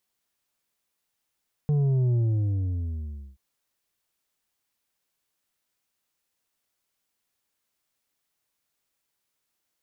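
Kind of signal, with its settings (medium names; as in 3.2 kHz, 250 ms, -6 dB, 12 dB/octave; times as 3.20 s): sub drop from 150 Hz, over 1.68 s, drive 6 dB, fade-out 1.23 s, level -20.5 dB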